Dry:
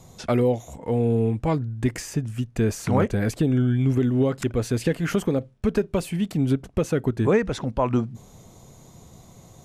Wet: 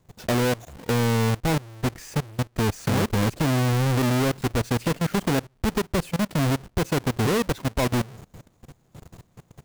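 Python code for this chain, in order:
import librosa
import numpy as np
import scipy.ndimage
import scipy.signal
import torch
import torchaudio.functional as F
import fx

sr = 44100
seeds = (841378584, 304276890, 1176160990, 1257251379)

y = fx.halfwave_hold(x, sr)
y = fx.level_steps(y, sr, step_db=21)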